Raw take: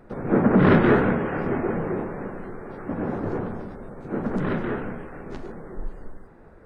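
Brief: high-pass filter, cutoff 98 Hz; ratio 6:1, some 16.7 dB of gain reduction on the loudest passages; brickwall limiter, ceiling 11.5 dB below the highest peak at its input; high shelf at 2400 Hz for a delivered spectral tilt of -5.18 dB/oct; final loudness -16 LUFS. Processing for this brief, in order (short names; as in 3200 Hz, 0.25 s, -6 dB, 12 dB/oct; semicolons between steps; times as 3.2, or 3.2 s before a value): HPF 98 Hz; high shelf 2400 Hz -8 dB; compressor 6:1, threshold -31 dBFS; gain +24.5 dB; limiter -7 dBFS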